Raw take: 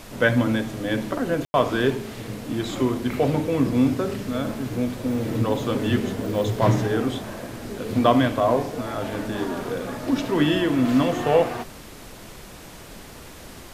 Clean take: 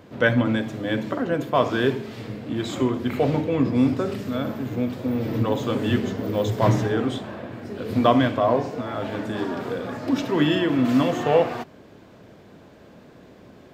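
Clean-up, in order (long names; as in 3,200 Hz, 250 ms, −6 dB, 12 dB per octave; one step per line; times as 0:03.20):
ambience match 0:01.45–0:01.54
noise reduction from a noise print 6 dB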